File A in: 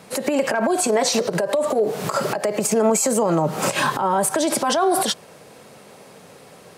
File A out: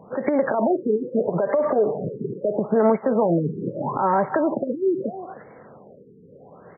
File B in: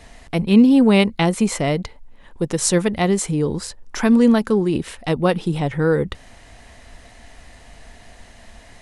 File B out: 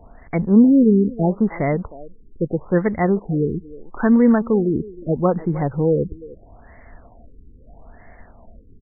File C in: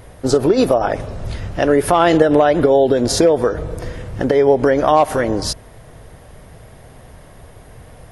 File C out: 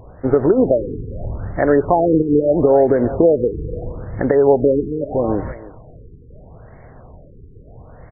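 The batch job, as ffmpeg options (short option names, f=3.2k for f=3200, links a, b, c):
-filter_complex "[0:a]asplit=2[a][b];[b]adelay=310,highpass=300,lowpass=3.4k,asoftclip=type=hard:threshold=-10dB,volume=-16dB[c];[a][c]amix=inputs=2:normalize=0,afftfilt=real='re*lt(b*sr/1024,460*pow(2300/460,0.5+0.5*sin(2*PI*0.77*pts/sr)))':imag='im*lt(b*sr/1024,460*pow(2300/460,0.5+0.5*sin(2*PI*0.77*pts/sr)))':win_size=1024:overlap=0.75"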